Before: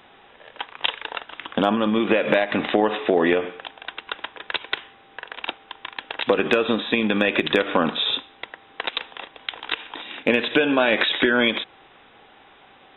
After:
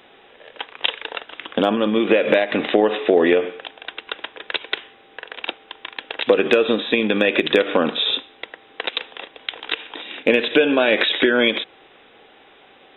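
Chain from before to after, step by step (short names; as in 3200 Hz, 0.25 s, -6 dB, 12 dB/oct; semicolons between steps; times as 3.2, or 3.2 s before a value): EQ curve 130 Hz 0 dB, 470 Hz +9 dB, 950 Hz +1 dB, 2400 Hz +6 dB; gain -3.5 dB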